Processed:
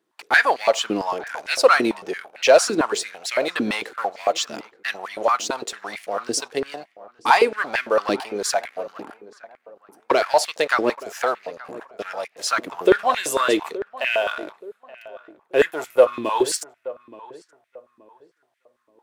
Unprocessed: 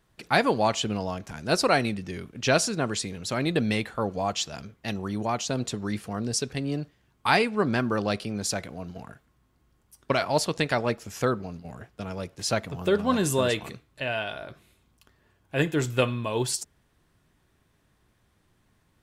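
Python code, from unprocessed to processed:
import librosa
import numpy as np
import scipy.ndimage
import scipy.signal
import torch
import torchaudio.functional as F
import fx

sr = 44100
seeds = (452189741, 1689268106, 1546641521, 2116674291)

y = fx.spec_box(x, sr, start_s=15.67, length_s=0.46, low_hz=1500.0, high_hz=8800.0, gain_db=-10)
y = fx.leveller(y, sr, passes=2)
y = fx.echo_filtered(y, sr, ms=875, feedback_pct=35, hz=1400.0, wet_db=-17)
y = fx.filter_held_highpass(y, sr, hz=8.9, low_hz=320.0, high_hz=2100.0)
y = y * librosa.db_to_amplitude(-4.0)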